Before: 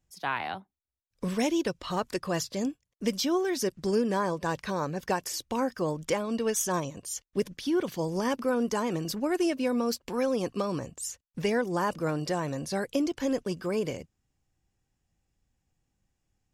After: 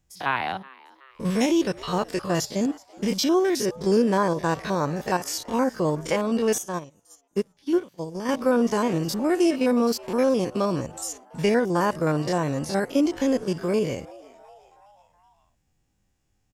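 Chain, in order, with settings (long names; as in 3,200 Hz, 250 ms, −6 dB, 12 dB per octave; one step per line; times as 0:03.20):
spectrum averaged block by block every 50 ms
echo with shifted repeats 374 ms, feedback 55%, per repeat +130 Hz, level −22.5 dB
0:06.58–0:08.29: expander for the loud parts 2.5 to 1, over −40 dBFS
level +7 dB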